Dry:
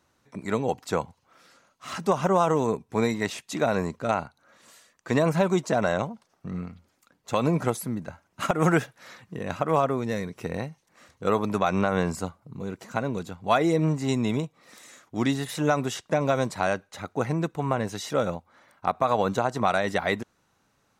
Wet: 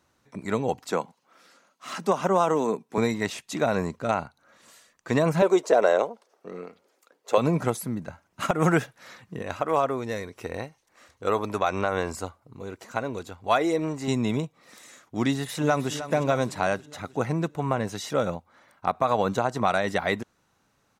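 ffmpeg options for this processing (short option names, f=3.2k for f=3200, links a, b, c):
-filter_complex "[0:a]asettb=1/sr,asplit=3[a][b][c];[a]atrim=end=0.904[d];[b]atrim=start=0.9:end=2.98,asetpts=PTS-STARTPTS,afade=t=in:d=0.004:c=qsin,afade=t=out:st=2.076:d=0.004:c=qsin,highpass=f=180:w=0.5412,highpass=f=180:w=1.3066[e];[c]atrim=start=2.976[f];[d][e]acrossfade=d=0.004:c1=hsin:c2=qsin[g];[g][f]acrossfade=d=0.004:c1=qsin:c2=hsin,asettb=1/sr,asplit=3[h][i][j];[h]atrim=end=5.424[k];[i]atrim=start=5.42:end=7.38,asetpts=PTS-STARTPTS,afade=t=in:d=0.004:c=qsin,afade=t=out:st=1.956:d=0.004:c=qsin,highpass=f=440:t=q:w=2.9[l];[j]atrim=start=7.376[m];[k][l]acrossfade=d=0.004:c1=hsin:c2=qsin[n];[n][m]acrossfade=d=0.004:c1=qsin:c2=hsin,asettb=1/sr,asplit=3[o][p][q];[o]atrim=end=9.424[r];[p]atrim=start=9.42:end=14.08,asetpts=PTS-STARTPTS,afade=t=in:d=0.004:c=qsin,afade=t=out:st=4.656:d=0.004:c=qsin,equalizer=f=170:t=o:w=0.77:g=-12[s];[q]atrim=start=14.076[t];[r][s]acrossfade=d=0.004:c1=hsin:c2=qsin[u];[u][t]acrossfade=d=0.004:c1=qsin:c2=hsin,asplit=2[v][w];[w]afade=t=in:st=15.3:d=0.01,afade=t=out:st=15.92:d=0.01,aecho=0:1:310|620|930|1240|1550|1860|2170:0.237137|0.142282|0.0853695|0.0512217|0.030733|0.0184398|0.0110639[x];[v][x]amix=inputs=2:normalize=0"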